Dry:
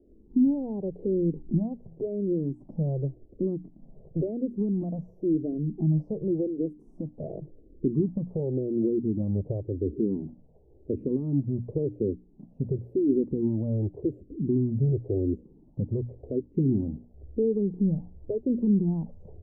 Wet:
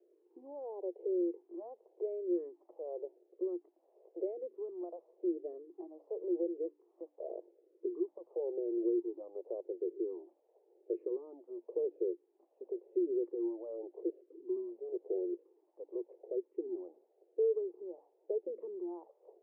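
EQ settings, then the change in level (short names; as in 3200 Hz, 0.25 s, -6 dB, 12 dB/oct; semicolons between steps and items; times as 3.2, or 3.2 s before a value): rippled Chebyshev high-pass 340 Hz, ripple 3 dB; air absorption 450 m; tilt shelf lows -7 dB, about 740 Hz; +1.0 dB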